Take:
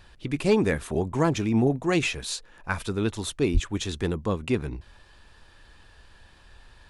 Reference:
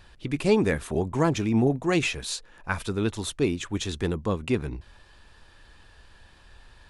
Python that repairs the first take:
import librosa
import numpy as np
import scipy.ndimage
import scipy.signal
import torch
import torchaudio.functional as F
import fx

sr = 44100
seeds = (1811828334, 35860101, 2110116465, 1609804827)

y = fx.fix_declip(x, sr, threshold_db=-12.0)
y = fx.highpass(y, sr, hz=140.0, slope=24, at=(3.53, 3.65), fade=0.02)